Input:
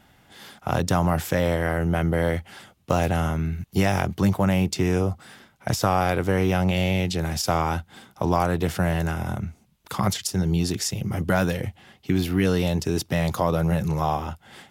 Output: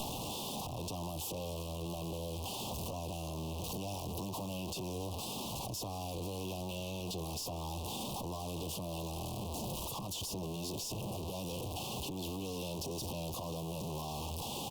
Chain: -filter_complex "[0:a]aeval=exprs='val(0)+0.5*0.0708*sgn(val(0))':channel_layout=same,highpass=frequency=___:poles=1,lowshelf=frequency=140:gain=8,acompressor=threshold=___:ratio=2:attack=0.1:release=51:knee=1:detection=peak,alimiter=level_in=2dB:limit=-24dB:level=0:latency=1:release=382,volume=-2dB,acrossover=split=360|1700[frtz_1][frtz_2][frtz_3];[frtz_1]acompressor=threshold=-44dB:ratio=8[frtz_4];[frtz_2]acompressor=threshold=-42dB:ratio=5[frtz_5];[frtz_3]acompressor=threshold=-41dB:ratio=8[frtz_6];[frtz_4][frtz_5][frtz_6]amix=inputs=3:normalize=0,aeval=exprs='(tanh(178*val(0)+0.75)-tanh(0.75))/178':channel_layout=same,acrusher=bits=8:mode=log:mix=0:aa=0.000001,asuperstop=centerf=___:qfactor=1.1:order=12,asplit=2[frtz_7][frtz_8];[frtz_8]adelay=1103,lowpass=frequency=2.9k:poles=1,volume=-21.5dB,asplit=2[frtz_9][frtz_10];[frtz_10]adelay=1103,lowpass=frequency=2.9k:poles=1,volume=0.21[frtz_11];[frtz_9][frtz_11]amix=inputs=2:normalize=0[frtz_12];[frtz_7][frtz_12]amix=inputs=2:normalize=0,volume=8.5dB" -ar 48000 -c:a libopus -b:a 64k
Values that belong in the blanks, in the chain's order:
100, -26dB, 1700